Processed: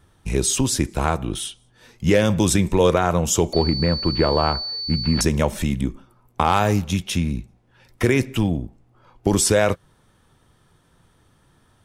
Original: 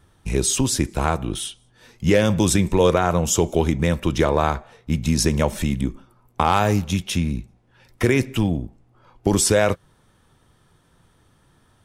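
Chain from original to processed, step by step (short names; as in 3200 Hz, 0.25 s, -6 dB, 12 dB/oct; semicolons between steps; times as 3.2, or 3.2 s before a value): 3.53–5.21 pulse-width modulation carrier 4500 Hz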